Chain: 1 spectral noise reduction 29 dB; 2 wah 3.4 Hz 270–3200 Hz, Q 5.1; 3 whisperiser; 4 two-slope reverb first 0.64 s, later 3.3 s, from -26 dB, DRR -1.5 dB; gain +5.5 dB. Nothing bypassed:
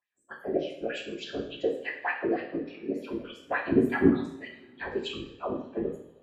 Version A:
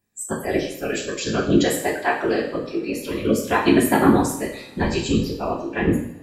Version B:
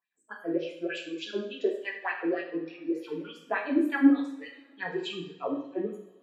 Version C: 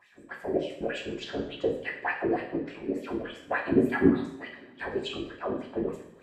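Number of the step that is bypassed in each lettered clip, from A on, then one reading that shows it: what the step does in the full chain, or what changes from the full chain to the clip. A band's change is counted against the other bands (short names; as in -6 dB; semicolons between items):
2, loudness change +9.0 LU; 3, 125 Hz band -10.0 dB; 1, momentary loudness spread change -2 LU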